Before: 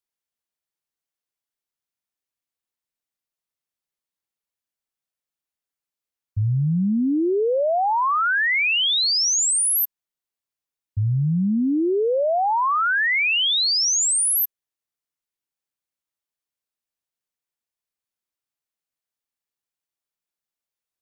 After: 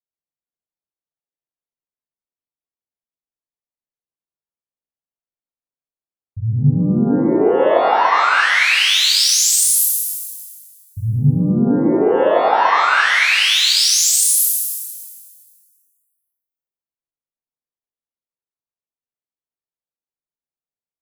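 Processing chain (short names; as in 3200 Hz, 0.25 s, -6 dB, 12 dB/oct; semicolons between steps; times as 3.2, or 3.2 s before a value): low-pass opened by the level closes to 820 Hz; spectral noise reduction 8 dB; on a send: flutter echo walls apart 7.2 m, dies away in 0.22 s; on the sum: shimmer reverb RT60 1.7 s, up +12 st, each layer -8 dB, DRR -7.5 dB; gain -3 dB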